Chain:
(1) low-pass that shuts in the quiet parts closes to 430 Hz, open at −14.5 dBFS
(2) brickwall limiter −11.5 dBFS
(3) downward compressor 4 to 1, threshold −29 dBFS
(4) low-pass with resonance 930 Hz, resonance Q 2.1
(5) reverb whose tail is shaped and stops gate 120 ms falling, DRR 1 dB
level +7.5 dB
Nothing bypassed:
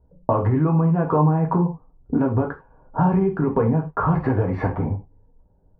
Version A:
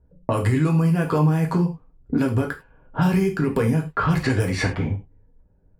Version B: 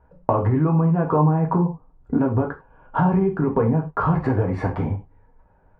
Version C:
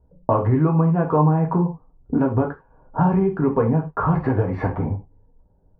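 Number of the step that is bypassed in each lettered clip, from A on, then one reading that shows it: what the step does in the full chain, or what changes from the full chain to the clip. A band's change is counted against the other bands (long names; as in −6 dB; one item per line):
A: 4, 2 kHz band +8.5 dB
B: 1, change in crest factor +1.5 dB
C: 2, average gain reduction 2.0 dB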